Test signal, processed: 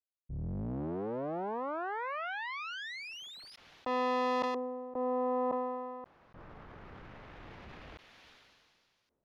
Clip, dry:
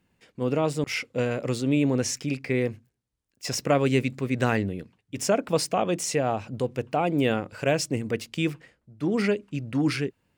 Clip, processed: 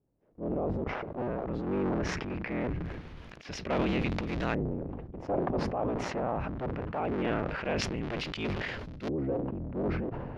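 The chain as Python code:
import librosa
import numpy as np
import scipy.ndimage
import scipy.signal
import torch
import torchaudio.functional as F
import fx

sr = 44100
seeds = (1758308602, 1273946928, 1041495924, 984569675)

y = fx.cycle_switch(x, sr, every=3, mode='inverted')
y = fx.peak_eq(y, sr, hz=8200.0, db=-11.5, octaves=0.4)
y = fx.transient(y, sr, attack_db=-3, sustain_db=10)
y = fx.filter_lfo_lowpass(y, sr, shape='saw_up', hz=0.22, low_hz=510.0, high_hz=5000.0, q=1.0)
y = fx.sustainer(y, sr, db_per_s=27.0)
y = y * 10.0 ** (-8.0 / 20.0)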